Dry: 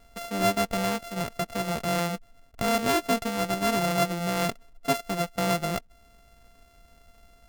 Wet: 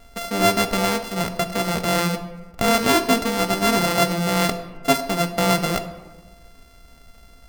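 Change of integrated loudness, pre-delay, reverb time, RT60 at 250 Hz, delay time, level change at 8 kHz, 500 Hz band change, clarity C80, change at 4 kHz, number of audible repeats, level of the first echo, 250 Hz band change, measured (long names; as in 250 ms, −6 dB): +7.0 dB, 12 ms, 1.3 s, 1.4 s, no echo audible, +8.0 dB, +6.0 dB, 13.0 dB, +8.5 dB, no echo audible, no echo audible, +6.5 dB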